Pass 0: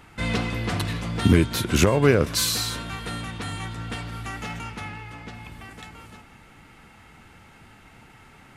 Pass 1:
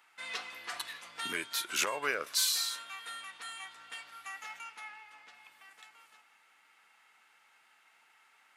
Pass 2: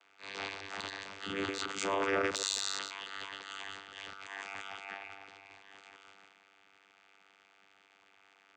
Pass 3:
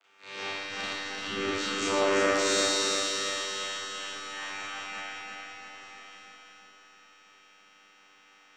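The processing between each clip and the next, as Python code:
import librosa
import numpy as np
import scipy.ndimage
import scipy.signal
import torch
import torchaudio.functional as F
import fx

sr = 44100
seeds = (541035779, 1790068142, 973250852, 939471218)

y1 = fx.noise_reduce_blind(x, sr, reduce_db=6)
y1 = scipy.signal.sosfilt(scipy.signal.butter(2, 1000.0, 'highpass', fs=sr, output='sos'), y1)
y1 = y1 * 10.0 ** (-5.0 / 20.0)
y2 = fx.reverse_delay(y1, sr, ms=121, wet_db=-6.5)
y2 = fx.vocoder(y2, sr, bands=16, carrier='saw', carrier_hz=98.0)
y2 = fx.transient(y2, sr, attack_db=-12, sustain_db=10)
y3 = fx.echo_feedback(y2, sr, ms=343, feedback_pct=57, wet_db=-3)
y3 = fx.rev_schroeder(y3, sr, rt60_s=0.82, comb_ms=29, drr_db=-8.0)
y3 = y3 * 10.0 ** (-3.0 / 20.0)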